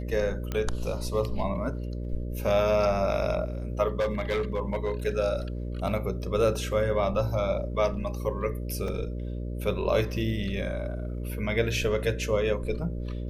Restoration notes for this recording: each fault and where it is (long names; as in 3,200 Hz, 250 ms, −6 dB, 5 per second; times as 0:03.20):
mains buzz 60 Hz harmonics 10 −33 dBFS
0:00.52: click −17 dBFS
0:03.99–0:04.92: clipping −22.5 dBFS
0:08.88: drop-out 2.7 ms